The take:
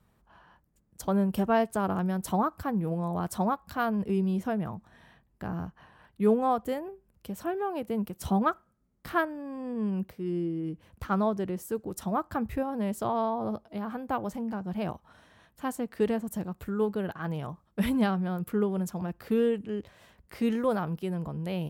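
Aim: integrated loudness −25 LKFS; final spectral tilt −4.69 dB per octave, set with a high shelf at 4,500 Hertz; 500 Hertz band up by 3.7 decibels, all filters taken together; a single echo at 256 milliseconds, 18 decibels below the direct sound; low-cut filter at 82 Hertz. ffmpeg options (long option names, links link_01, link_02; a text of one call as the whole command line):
ffmpeg -i in.wav -af "highpass=82,equalizer=frequency=500:width_type=o:gain=4.5,highshelf=frequency=4500:gain=5.5,aecho=1:1:256:0.126,volume=3.5dB" out.wav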